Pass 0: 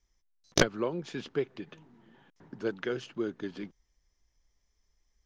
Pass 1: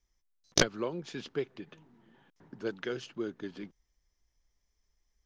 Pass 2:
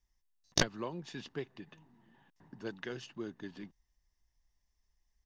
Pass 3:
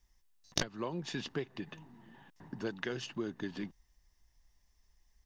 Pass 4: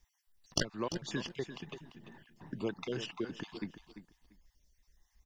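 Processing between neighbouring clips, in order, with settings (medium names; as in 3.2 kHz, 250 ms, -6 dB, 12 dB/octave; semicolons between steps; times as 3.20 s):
dynamic bell 5.2 kHz, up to +6 dB, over -51 dBFS, Q 0.78; trim -3 dB
comb 1.1 ms, depth 40%; trim -3.5 dB
compression 3:1, threshold -42 dBFS, peak gain reduction 14.5 dB; trim +8 dB
random holes in the spectrogram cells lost 33%; feedback delay 343 ms, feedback 19%, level -11.5 dB; trim +2 dB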